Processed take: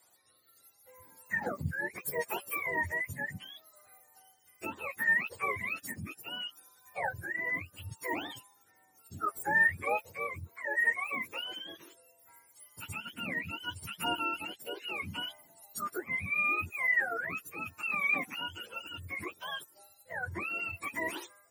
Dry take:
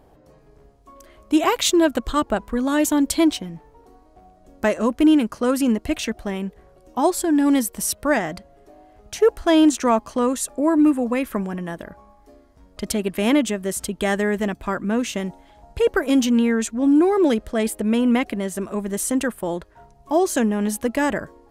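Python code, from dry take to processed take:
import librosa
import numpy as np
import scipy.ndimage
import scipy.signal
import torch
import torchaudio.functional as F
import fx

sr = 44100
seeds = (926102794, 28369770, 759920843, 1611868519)

y = fx.octave_mirror(x, sr, pivot_hz=750.0)
y = fx.rotary(y, sr, hz=0.7)
y = fx.bass_treble(y, sr, bass_db=-11, treble_db=14)
y = F.gain(torch.from_numpy(y), -9.0).numpy()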